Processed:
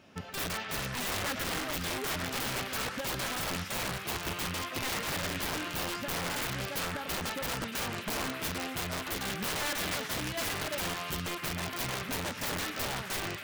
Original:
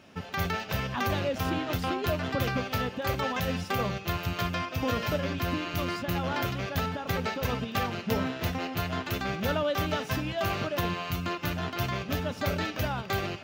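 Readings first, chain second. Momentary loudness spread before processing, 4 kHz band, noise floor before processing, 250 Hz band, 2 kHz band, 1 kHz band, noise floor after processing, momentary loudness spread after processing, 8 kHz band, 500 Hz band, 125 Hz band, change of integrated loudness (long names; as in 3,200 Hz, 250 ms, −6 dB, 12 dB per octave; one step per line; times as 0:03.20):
3 LU, +1.0 dB, −42 dBFS, −7.0 dB, −1.0 dB, −5.0 dB, −41 dBFS, 2 LU, +8.5 dB, −7.0 dB, −9.0 dB, −3.0 dB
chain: wrap-around overflow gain 25 dB
echo through a band-pass that steps 117 ms, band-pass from 1,600 Hz, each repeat 0.7 octaves, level −3.5 dB
level −3.5 dB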